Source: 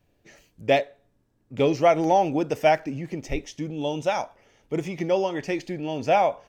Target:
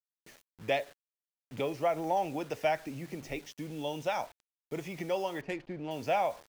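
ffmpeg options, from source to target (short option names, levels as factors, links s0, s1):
-filter_complex "[0:a]asettb=1/sr,asplit=3[s0][s1][s2];[s0]atrim=end=1.614[s3];[s1]atrim=start=1.61:end=2.17,asetpts=PTS-STARTPTS,afade=t=in:d=0.004:c=qsin,afade=t=out:st=0.556:d=0.004:c=qsin,highshelf=f=2800:g=-11[s4];[s2]atrim=start=2.166[s5];[s3][s4]acrossfade=d=0.004:c1=hsin:c2=qsin[s6];[s6][s5]acrossfade=d=0.004:c1=qsin:c2=hsin,asettb=1/sr,asplit=3[s7][s8][s9];[s7]atrim=end=2.884[s10];[s8]atrim=start=2.88:end=3.54,asetpts=PTS-STARTPTS,afade=t=in:d=0.004:c=qsin,afade=t=out:st=0.656:d=0.004:c=qsin,bandreject=f=50:t=h:w=6,bandreject=f=100:t=h:w=6,bandreject=f=150:t=h:w=6,bandreject=f=200:t=h:w=6[s11];[s9]atrim=start=3.536[s12];[s10][s11]acrossfade=d=0.004:c1=hsin:c2=qsin[s13];[s13][s12]acrossfade=d=0.004:c1=qsin:c2=hsin,acrossover=split=110|580|5700[s14][s15][s16][s17];[s14]acompressor=threshold=0.00398:ratio=4[s18];[s15]acompressor=threshold=0.0224:ratio=4[s19];[s16]acompressor=threshold=0.0891:ratio=4[s20];[s17]acompressor=threshold=0.00158:ratio=4[s21];[s18][s19][s20][s21]amix=inputs=4:normalize=0,acrusher=bits=7:mix=0:aa=0.000001,asettb=1/sr,asplit=3[s22][s23][s24];[s22]atrim=end=5.414[s25];[s23]atrim=start=5.41:end=5.91,asetpts=PTS-STARTPTS,afade=t=in:d=0.004:c=qsin,afade=t=out:st=0.496:d=0.004:c=qsin,adynamicsmooth=sensitivity=4:basefreq=1400[s26];[s24]atrim=start=5.906[s27];[s25][s26]acrossfade=d=0.004:c1=hsin:c2=qsin[s28];[s28][s27]acrossfade=d=0.004:c1=qsin:c2=hsin,volume=0.531"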